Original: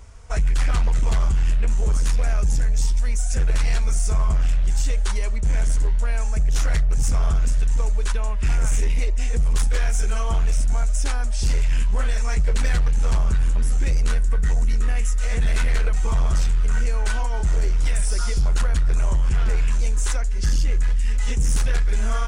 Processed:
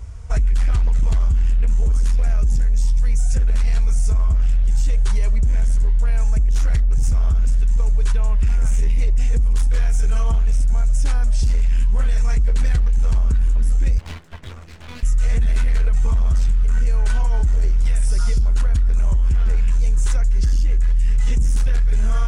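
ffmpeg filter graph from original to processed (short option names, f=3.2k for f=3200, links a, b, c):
-filter_complex "[0:a]asettb=1/sr,asplit=3[a][b][c];[a]atrim=end=13.984[d];[b]atrim=start=13.98:end=15.03,asetpts=PTS-STARTPTS,afade=t=in:d=0.004:c=qsin,afade=t=out:st=1.046:d=0.004:c=qsin,highpass=380,lowpass=3.1k,aeval=exprs='abs(val(0))':c=same[e];[c]atrim=start=15.026[f];[d][e]acrossfade=d=0.004:c1=hsin:c2=qsin[g];[g][f]acrossfade=d=0.004:c1=qsin:c2=hsin,equalizer=f=74:w=0.49:g=13,alimiter=limit=-11.5dB:level=0:latency=1:release=10"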